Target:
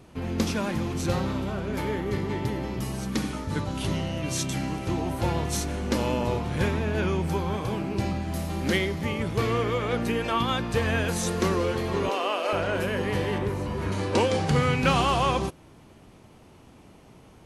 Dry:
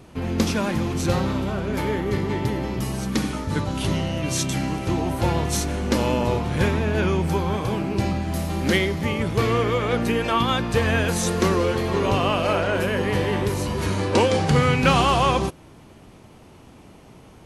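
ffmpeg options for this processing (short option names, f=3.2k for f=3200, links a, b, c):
-filter_complex "[0:a]asettb=1/sr,asplit=3[a][b][c];[a]atrim=end=12.094[d];[b]atrim=start=12.09:end=12.53,asetpts=PTS-STARTPTS,afade=t=in:d=0.004:c=qsin,afade=t=out:st=0.436:d=0.004:c=qsin,highpass=f=340:w=0.5412,highpass=f=340:w=1.3066[e];[c]atrim=start=12.526[f];[d][e]acrossfade=d=0.004:c1=hsin:c2=qsin[g];[g][f]acrossfade=d=0.004:c1=qsin:c2=hsin,asettb=1/sr,asplit=3[h][i][j];[h]atrim=end=13.384[k];[i]atrim=start=13.38:end=13.92,asetpts=PTS-STARTPTS,afade=t=in:d=0.004:c=qsin,afade=t=out:st=0.536:d=0.004:c=qsin,acrossover=split=2600[l][m];[m]acompressor=threshold=-47dB:ratio=4:attack=1:release=60[n];[l][n]amix=inputs=2:normalize=0[o];[j]atrim=start=13.916[p];[k][o]acrossfade=d=0.004:c1=hsin:c2=qsin[q];[q][p]acrossfade=d=0.004:c1=qsin:c2=hsin,volume=-4.5dB"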